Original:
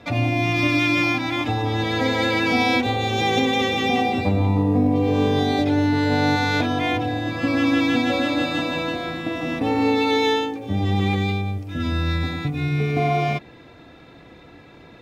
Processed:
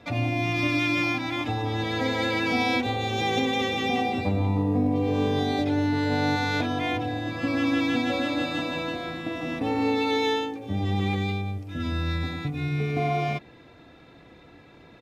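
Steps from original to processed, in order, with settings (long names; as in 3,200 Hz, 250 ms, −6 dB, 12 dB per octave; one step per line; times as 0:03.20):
downsampling to 32,000 Hz
level −5 dB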